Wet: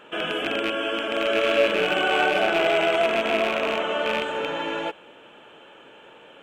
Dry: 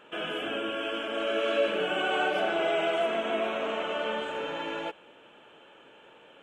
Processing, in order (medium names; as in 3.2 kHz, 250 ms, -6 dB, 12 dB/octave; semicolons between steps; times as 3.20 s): rattle on loud lows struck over -41 dBFS, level -21 dBFS; trim +6 dB